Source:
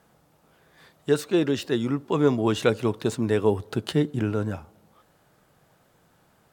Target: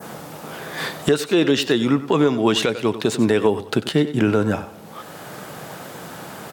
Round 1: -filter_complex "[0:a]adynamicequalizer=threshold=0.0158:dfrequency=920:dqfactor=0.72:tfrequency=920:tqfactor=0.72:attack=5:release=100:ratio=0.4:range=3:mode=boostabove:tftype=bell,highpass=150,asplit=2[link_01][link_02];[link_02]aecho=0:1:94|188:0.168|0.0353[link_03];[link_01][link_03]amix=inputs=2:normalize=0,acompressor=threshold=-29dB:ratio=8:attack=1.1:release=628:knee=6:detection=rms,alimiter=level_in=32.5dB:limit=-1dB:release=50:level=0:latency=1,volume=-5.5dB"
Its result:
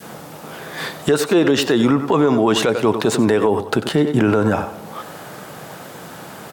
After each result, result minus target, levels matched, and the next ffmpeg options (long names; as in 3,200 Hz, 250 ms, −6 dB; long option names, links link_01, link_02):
downward compressor: peak gain reduction −6 dB; 4,000 Hz band −2.5 dB
-filter_complex "[0:a]adynamicequalizer=threshold=0.0158:dfrequency=920:dqfactor=0.72:tfrequency=920:tqfactor=0.72:attack=5:release=100:ratio=0.4:range=3:mode=boostabove:tftype=bell,highpass=150,asplit=2[link_01][link_02];[link_02]aecho=0:1:94|188:0.168|0.0353[link_03];[link_01][link_03]amix=inputs=2:normalize=0,acompressor=threshold=-37dB:ratio=8:attack=1.1:release=628:knee=6:detection=rms,alimiter=level_in=32.5dB:limit=-1dB:release=50:level=0:latency=1,volume=-5.5dB"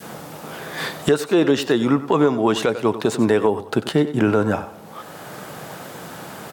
4,000 Hz band −4.5 dB
-filter_complex "[0:a]adynamicequalizer=threshold=0.0158:dfrequency=3000:dqfactor=0.72:tfrequency=3000:tqfactor=0.72:attack=5:release=100:ratio=0.4:range=3:mode=boostabove:tftype=bell,highpass=150,asplit=2[link_01][link_02];[link_02]aecho=0:1:94|188:0.168|0.0353[link_03];[link_01][link_03]amix=inputs=2:normalize=0,acompressor=threshold=-37dB:ratio=8:attack=1.1:release=628:knee=6:detection=rms,alimiter=level_in=32.5dB:limit=-1dB:release=50:level=0:latency=1,volume=-5.5dB"